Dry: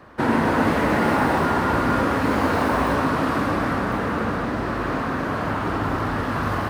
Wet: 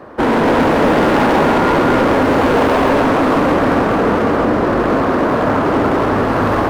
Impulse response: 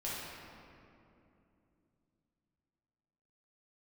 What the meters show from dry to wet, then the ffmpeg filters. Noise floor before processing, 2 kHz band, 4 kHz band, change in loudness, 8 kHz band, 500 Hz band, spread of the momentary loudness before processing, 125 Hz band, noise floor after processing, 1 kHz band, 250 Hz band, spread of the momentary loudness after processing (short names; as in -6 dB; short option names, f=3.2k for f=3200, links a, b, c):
-26 dBFS, +6.0 dB, +8.0 dB, +8.5 dB, +5.0 dB, +11.5 dB, 5 LU, +4.5 dB, -16 dBFS, +7.5 dB, +8.5 dB, 3 LU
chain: -filter_complex "[0:a]equalizer=f=470:t=o:w=2.5:g=12,asoftclip=type=hard:threshold=-13.5dB,asplit=2[a][b];[1:a]atrim=start_sample=2205,asetrate=39249,aresample=44100,adelay=137[c];[b][c]afir=irnorm=-1:irlink=0,volume=-11dB[d];[a][d]amix=inputs=2:normalize=0,volume=2.5dB"